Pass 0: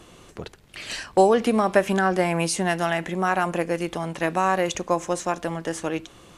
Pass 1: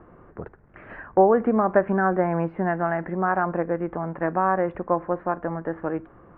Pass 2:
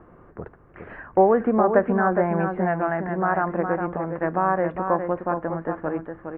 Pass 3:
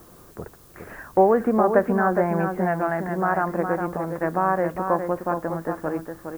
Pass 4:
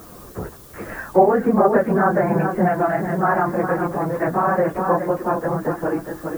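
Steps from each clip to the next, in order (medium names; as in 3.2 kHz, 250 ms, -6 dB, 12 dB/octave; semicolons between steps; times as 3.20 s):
steep low-pass 1.7 kHz 36 dB/octave
delay 412 ms -6.5 dB
added noise blue -54 dBFS
phase randomisation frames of 50 ms; in parallel at +1 dB: compression, threshold -30 dBFS, peak gain reduction 18 dB; on the sum: trim +1 dB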